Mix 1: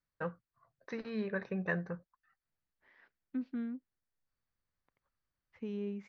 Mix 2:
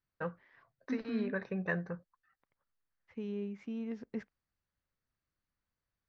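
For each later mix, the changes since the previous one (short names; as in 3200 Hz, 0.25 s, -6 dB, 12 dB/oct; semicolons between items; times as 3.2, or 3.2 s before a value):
second voice: entry -2.45 s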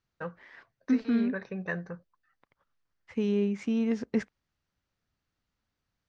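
second voice +11.5 dB; master: remove air absorption 120 m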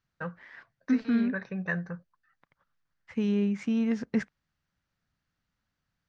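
master: add fifteen-band EQ 160 Hz +5 dB, 400 Hz -4 dB, 1600 Hz +4 dB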